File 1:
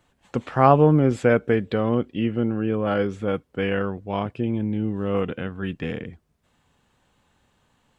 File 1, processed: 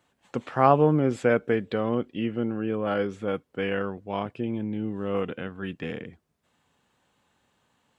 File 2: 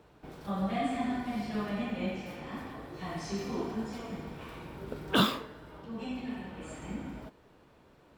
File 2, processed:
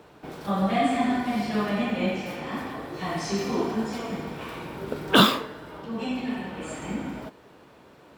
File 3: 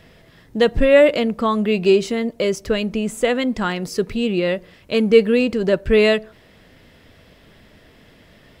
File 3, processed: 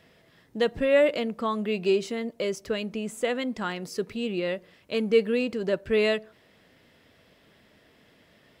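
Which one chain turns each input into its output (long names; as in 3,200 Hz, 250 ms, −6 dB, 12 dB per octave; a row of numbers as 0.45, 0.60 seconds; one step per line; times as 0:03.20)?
high-pass filter 170 Hz 6 dB per octave
loudness normalisation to −27 LKFS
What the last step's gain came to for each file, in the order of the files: −3.0, +9.5, −8.0 decibels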